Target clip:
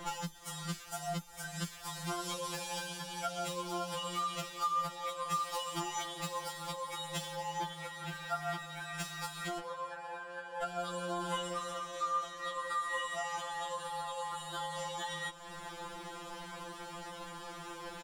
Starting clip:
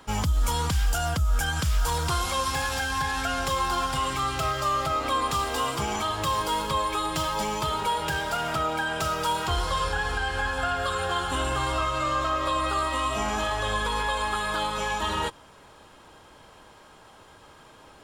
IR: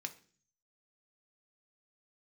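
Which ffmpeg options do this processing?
-filter_complex "[0:a]acompressor=threshold=-39dB:ratio=16,asplit=2[a][b];[b]aecho=0:1:407|814|1221|1628:0.158|0.0761|0.0365|0.0175[c];[a][c]amix=inputs=2:normalize=0,asettb=1/sr,asplit=3[d][e][f];[d]atrim=end=7.344[g];[e]atrim=start=7.34:end=8.81,asetpts=PTS-STARTPTS,afade=t=in:d=0.004:c=qsin,afade=t=out:st=1.466:d=0.004:c=qsin,acrossover=split=3100[h][i];[i]acompressor=threshold=-56dB:ratio=4:attack=1:release=60[j];[h][j]amix=inputs=2:normalize=0[k];[f]atrim=start=8.806[l];[g][k]acrossfade=d=0.004:c1=hsin:c2=qsin[m];[m][l]acrossfade=d=0.004:c1=qsin:c2=hsin,asettb=1/sr,asplit=3[n][o][p];[n]atrim=end=9.594[q];[o]atrim=start=9.59:end=10.62,asetpts=PTS-STARTPTS,afade=t=in:d=0.004:c=qsin,afade=t=out:st=1.026:d=0.004:c=qsin,acrossover=split=470 2200:gain=0.141 1 0.2[r][s][t];[r][s][t]amix=inputs=3:normalize=0[u];[p]atrim=start=10.616[v];[q][u]acrossfade=d=0.004:c1=hsin:c2=qsin[w];[w][v]acrossfade=d=0.004:c1=qsin:c2=hsin,afftfilt=real='re*2.83*eq(mod(b,8),0)':imag='im*2.83*eq(mod(b,8),0)':win_size=2048:overlap=0.75,volume=8.5dB"

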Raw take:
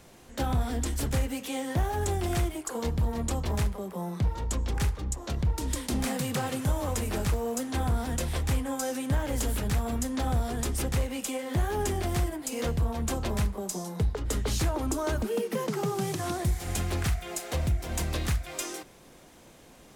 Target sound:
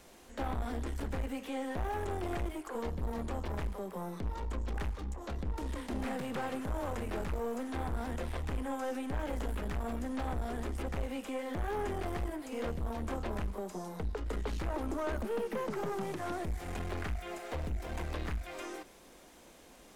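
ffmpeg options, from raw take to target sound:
-filter_complex "[0:a]acrossover=split=2600[a][b];[b]acompressor=threshold=-52dB:ratio=4:attack=1:release=60[c];[a][c]amix=inputs=2:normalize=0,aeval=exprs='(tanh(25.1*val(0)+0.4)-tanh(0.4))/25.1':c=same,equalizer=f=120:t=o:w=0.82:g=-13,volume=-1dB"

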